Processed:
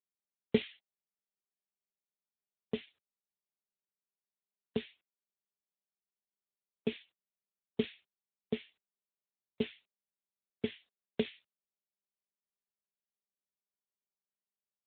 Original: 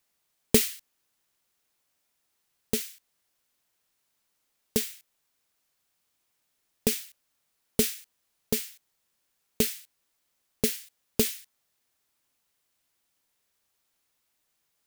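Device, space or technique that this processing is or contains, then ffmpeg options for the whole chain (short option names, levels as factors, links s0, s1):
mobile call with aggressive noise cancelling: -af "highpass=140,afftdn=nr=20:nf=-52,volume=0.562" -ar 8000 -c:a libopencore_amrnb -b:a 12200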